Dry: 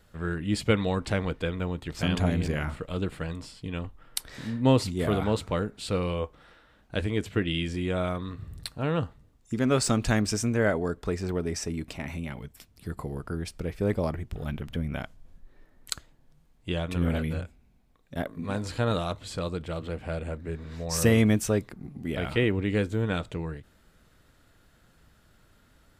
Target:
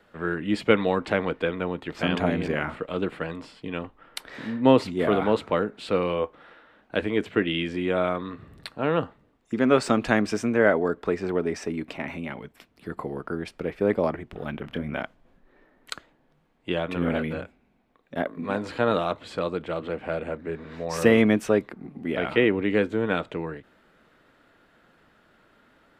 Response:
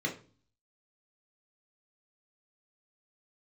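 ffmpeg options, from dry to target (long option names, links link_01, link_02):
-filter_complex "[0:a]acrossover=split=200 3300:gain=0.126 1 0.158[link_01][link_02][link_03];[link_01][link_02][link_03]amix=inputs=3:normalize=0,asettb=1/sr,asplit=3[link_04][link_05][link_06];[link_04]atrim=end=14.614[link_07];[link_05]atrim=start=14.61:end=15.01,asetpts=PTS-STARTPTS,afade=type=in:duration=0.004:curve=qsin,afade=type=out:start_time=0.396:duration=0.004:curve=qsin,asplit=2[link_08][link_09];[link_09]adelay=27,volume=-9dB[link_10];[link_08][link_10]amix=inputs=2:normalize=0,atrim=end_sample=17640[link_11];[link_06]atrim=start=15.006[link_12];[link_07][link_11]acrossfade=duration=0.004:curve1=hsin:curve2=qsin[link_13];[link_13][link_12]acrossfade=duration=0.004:curve1=qsin:curve2=hsin,volume=6dB"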